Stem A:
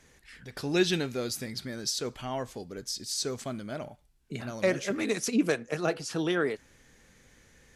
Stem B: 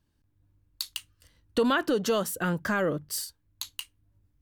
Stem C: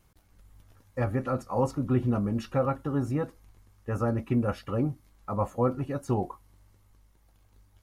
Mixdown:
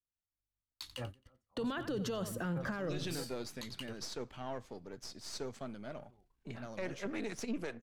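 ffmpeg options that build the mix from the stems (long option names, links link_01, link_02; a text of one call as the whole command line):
ffmpeg -i stem1.wav -i stem2.wav -i stem3.wav -filter_complex "[0:a]aeval=exprs='if(lt(val(0),0),0.447*val(0),val(0))':channel_layout=same,lowpass=frequency=3100:poles=1,adelay=2150,volume=-5dB[link_01];[1:a]lowpass=frequency=1400:poles=1,agate=range=-39dB:threshold=-58dB:ratio=16:detection=peak,volume=3dB,asplit=3[link_02][link_03][link_04];[link_03]volume=-18dB[link_05];[2:a]volume=-14.5dB[link_06];[link_04]apad=whole_len=344933[link_07];[link_06][link_07]sidechaingate=range=-28dB:threshold=-54dB:ratio=16:detection=peak[link_08];[link_05]aecho=0:1:89|178|267|356:1|0.24|0.0576|0.0138[link_09];[link_01][link_02][link_08][link_09]amix=inputs=4:normalize=0,acrossover=split=130|3000[link_10][link_11][link_12];[link_11]acompressor=threshold=-31dB:ratio=6[link_13];[link_10][link_13][link_12]amix=inputs=3:normalize=0,alimiter=level_in=5.5dB:limit=-24dB:level=0:latency=1:release=19,volume=-5.5dB" out.wav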